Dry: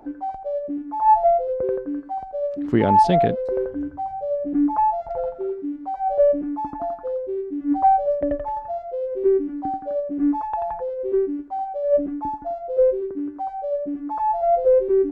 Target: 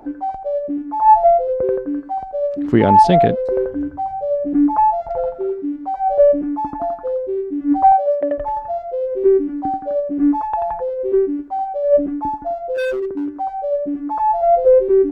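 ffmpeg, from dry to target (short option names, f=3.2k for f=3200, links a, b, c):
-filter_complex "[0:a]asettb=1/sr,asplit=3[a][b][c];[a]atrim=end=7.924[d];[b]atrim=start=7.92:end=8.38,asetpts=PTS-STARTPTS,afade=t=in:d=0.004:c=qsin,afade=t=out:st=0.456:d=0.004:c=qsin,highpass=360[e];[c]atrim=start=8.376[f];[d][e]acrossfade=d=0.004:c1=hsin:c2=qsin[g];[g][f]acrossfade=d=0.004:c1=qsin:c2=hsin,asplit=3[h][i][j];[h]afade=t=out:st=12.74:d=0.02[k];[i]volume=23.5dB,asoftclip=hard,volume=-23.5dB,afade=t=in:st=12.74:d=0.02,afade=t=out:st=13.29:d=0.02[l];[j]afade=t=in:st=13.29:d=0.02[m];[k][l][m]amix=inputs=3:normalize=0,volume=5dB"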